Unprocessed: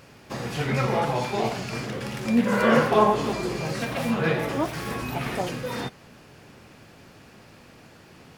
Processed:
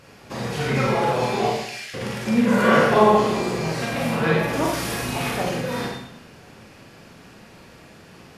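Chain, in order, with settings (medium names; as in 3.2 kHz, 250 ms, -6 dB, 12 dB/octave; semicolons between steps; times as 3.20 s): 1.50–1.94 s: steep high-pass 1.7 kHz; 4.53–5.31 s: treble shelf 3.6 kHz +9 dB; brick-wall FIR low-pass 14 kHz; Schroeder reverb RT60 0.75 s, combs from 33 ms, DRR -1.5 dB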